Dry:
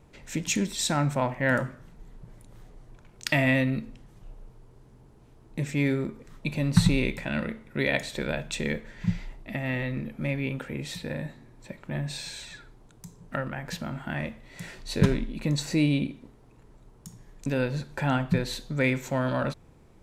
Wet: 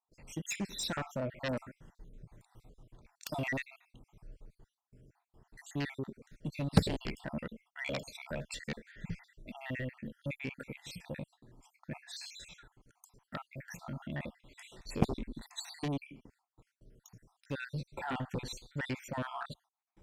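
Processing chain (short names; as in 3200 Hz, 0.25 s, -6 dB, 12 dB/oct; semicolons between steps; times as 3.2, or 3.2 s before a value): random spectral dropouts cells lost 60%; gate with hold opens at -51 dBFS; added harmonics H 2 -25 dB, 3 -15 dB, 7 -15 dB, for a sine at -5.5 dBFS; gain -3 dB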